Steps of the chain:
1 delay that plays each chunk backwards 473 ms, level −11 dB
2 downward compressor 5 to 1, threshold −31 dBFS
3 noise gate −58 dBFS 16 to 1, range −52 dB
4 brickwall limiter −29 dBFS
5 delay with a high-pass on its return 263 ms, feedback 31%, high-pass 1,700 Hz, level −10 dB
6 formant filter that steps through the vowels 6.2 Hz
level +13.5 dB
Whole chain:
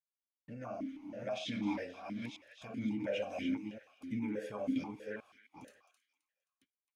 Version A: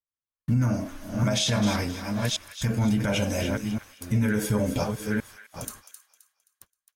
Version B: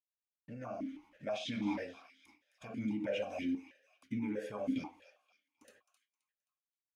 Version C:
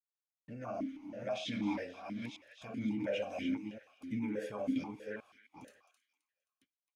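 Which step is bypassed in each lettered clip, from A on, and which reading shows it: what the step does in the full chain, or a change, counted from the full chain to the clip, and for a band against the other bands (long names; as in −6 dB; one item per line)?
6, 125 Hz band +12.0 dB
1, change in momentary loudness spread −4 LU
2, average gain reduction 2.0 dB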